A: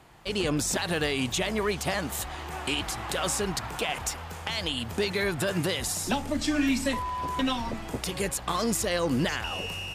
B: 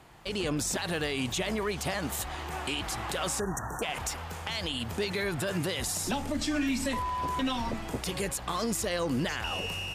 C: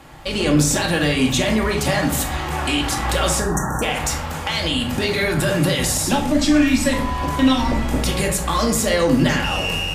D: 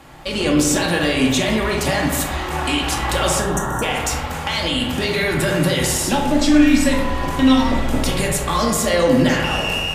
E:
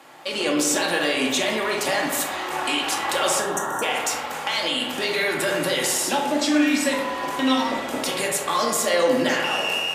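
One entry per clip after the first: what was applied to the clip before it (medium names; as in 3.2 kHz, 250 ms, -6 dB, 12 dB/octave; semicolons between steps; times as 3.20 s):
spectral selection erased 3.40–3.83 s, 1.9–5.6 kHz; peak limiter -22 dBFS, peak gain reduction 4.5 dB
reverberation RT60 0.55 s, pre-delay 4 ms, DRR 0.5 dB; trim +9 dB
hum notches 50/100/150 Hz; spring tank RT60 1.5 s, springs 57 ms, chirp 50 ms, DRR 5 dB
high-pass 360 Hz 12 dB/octave; trim -2 dB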